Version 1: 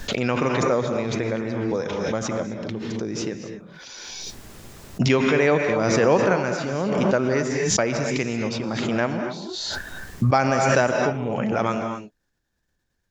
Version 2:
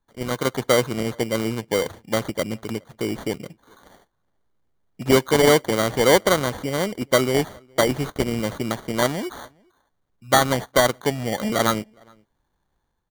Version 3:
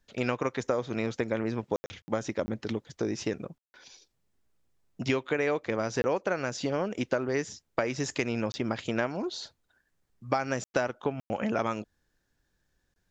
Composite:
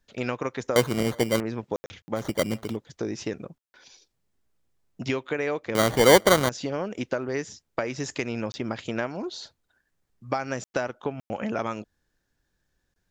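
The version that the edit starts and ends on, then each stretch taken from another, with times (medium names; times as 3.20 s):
3
0.76–1.40 s: from 2
2.23–2.69 s: from 2, crossfade 0.16 s
5.75–6.49 s: from 2
not used: 1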